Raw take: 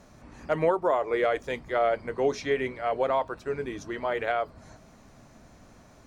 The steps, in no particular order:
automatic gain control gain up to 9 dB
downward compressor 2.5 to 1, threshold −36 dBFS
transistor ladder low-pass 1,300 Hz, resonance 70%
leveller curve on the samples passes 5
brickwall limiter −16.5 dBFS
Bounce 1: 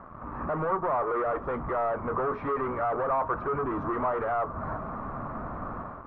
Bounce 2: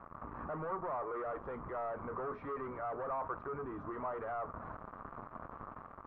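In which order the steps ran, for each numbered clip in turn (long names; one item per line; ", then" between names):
downward compressor, then automatic gain control, then brickwall limiter, then leveller curve on the samples, then transistor ladder low-pass
leveller curve on the samples, then automatic gain control, then brickwall limiter, then downward compressor, then transistor ladder low-pass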